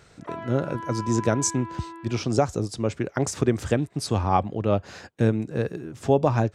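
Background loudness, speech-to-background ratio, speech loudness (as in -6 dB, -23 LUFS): -37.5 LUFS, 12.0 dB, -25.5 LUFS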